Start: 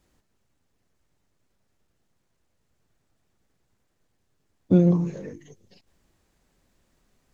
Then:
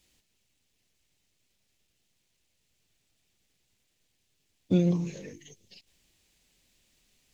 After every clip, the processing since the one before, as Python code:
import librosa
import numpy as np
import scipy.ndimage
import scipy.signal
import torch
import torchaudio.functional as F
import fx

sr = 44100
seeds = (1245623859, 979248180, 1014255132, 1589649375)

y = fx.high_shelf_res(x, sr, hz=1900.0, db=11.0, q=1.5)
y = F.gain(torch.from_numpy(y), -6.0).numpy()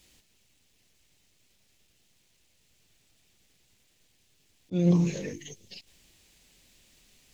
y = fx.auto_swell(x, sr, attack_ms=290.0)
y = F.gain(torch.from_numpy(y), 7.5).numpy()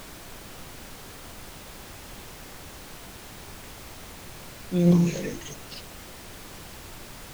y = fx.dmg_noise_colour(x, sr, seeds[0], colour='pink', level_db=-46.0)
y = F.gain(torch.from_numpy(y), 3.5).numpy()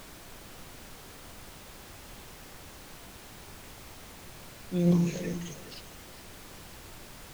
y = x + 10.0 ** (-14.0 / 20.0) * np.pad(x, (int(410 * sr / 1000.0), 0))[:len(x)]
y = F.gain(torch.from_numpy(y), -5.0).numpy()